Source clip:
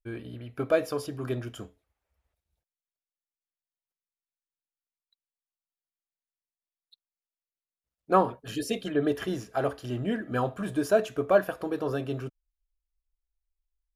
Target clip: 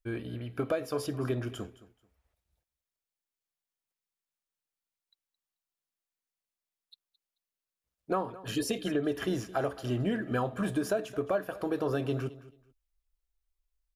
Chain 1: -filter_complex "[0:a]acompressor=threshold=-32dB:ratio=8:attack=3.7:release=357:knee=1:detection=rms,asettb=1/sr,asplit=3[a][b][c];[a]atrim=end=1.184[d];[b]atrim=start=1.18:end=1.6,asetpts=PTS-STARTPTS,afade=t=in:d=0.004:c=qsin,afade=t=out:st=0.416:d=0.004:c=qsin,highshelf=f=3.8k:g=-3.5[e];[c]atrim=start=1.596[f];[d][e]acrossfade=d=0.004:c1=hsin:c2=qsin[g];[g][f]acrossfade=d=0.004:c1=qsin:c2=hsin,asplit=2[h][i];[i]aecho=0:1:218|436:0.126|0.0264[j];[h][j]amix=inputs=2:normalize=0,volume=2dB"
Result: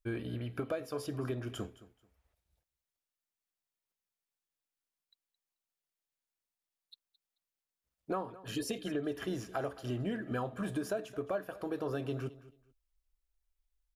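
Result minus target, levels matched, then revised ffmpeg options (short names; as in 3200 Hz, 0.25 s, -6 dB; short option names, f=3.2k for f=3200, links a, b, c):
compressor: peak gain reduction +5.5 dB
-filter_complex "[0:a]acompressor=threshold=-25.5dB:ratio=8:attack=3.7:release=357:knee=1:detection=rms,asettb=1/sr,asplit=3[a][b][c];[a]atrim=end=1.184[d];[b]atrim=start=1.18:end=1.6,asetpts=PTS-STARTPTS,afade=t=in:d=0.004:c=qsin,afade=t=out:st=0.416:d=0.004:c=qsin,highshelf=f=3.8k:g=-3.5[e];[c]atrim=start=1.596[f];[d][e]acrossfade=d=0.004:c1=hsin:c2=qsin[g];[g][f]acrossfade=d=0.004:c1=qsin:c2=hsin,asplit=2[h][i];[i]aecho=0:1:218|436:0.126|0.0264[j];[h][j]amix=inputs=2:normalize=0,volume=2dB"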